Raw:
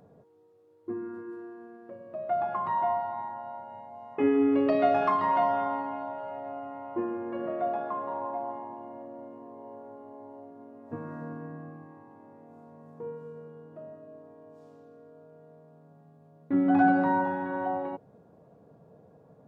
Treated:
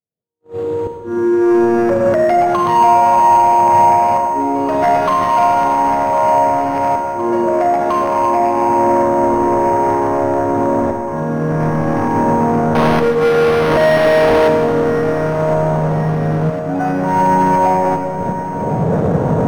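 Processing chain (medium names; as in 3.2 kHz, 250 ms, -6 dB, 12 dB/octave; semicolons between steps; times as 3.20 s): recorder AGC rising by 51 dB/s; slow attack 720 ms; bass shelf 150 Hz +7.5 dB; gate -34 dBFS, range -56 dB; 12.75–14.48 s: overdrive pedal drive 37 dB, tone 2.9 kHz, clips at -15.5 dBFS; in parallel at -10 dB: short-mantissa float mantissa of 2-bit; on the sum: sine folder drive 6 dB, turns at -10 dBFS; on a send: feedback echo behind a low-pass 1058 ms, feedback 61%, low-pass 2.4 kHz, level -11 dB; on the sum: Schroeder reverb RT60 1.6 s, combs from 33 ms, DRR 5.5 dB; decimation joined by straight lines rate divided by 6×; trim -1 dB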